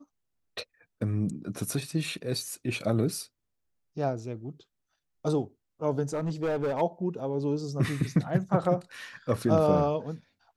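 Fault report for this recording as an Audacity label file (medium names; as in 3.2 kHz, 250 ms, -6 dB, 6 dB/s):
6.130000	6.820000	clipped -25 dBFS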